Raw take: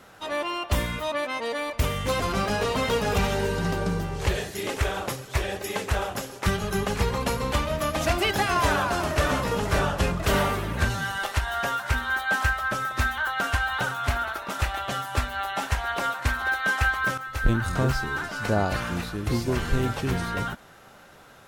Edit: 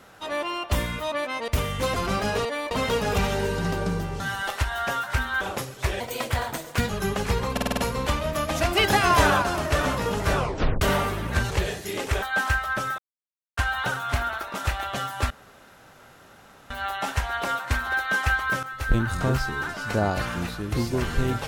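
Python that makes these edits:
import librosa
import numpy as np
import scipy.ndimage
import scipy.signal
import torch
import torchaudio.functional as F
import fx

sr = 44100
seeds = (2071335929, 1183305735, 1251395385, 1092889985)

y = fx.edit(x, sr, fx.move(start_s=1.48, length_s=0.26, to_s=2.71),
    fx.swap(start_s=4.2, length_s=0.72, other_s=10.96, other_length_s=1.21),
    fx.speed_span(start_s=5.51, length_s=1.09, speed=1.22),
    fx.stutter(start_s=7.23, slice_s=0.05, count=6),
    fx.clip_gain(start_s=8.23, length_s=0.65, db=4.0),
    fx.tape_stop(start_s=9.82, length_s=0.45),
    fx.silence(start_s=12.93, length_s=0.59),
    fx.insert_room_tone(at_s=15.25, length_s=1.4), tone=tone)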